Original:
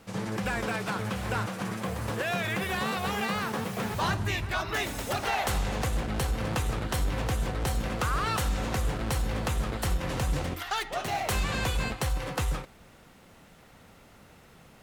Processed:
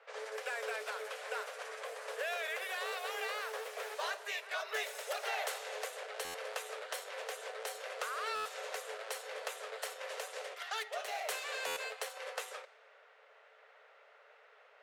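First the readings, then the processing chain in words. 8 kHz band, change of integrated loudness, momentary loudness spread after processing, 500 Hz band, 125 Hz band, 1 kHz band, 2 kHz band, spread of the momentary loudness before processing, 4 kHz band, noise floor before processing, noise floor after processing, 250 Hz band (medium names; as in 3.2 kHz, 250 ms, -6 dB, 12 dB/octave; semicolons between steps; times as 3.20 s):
-7.0 dB, -9.5 dB, 6 LU, -6.5 dB, under -40 dB, -9.5 dB, -6.5 dB, 4 LU, -7.0 dB, -55 dBFS, -63 dBFS, under -35 dB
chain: dynamic bell 1.3 kHz, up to -6 dB, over -42 dBFS, Q 0.73; rippled Chebyshev high-pass 420 Hz, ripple 6 dB; level-controlled noise filter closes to 2.6 kHz, open at -37 dBFS; buffer glitch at 6.24/8.35/11.66 s, samples 512, times 8; trim -1 dB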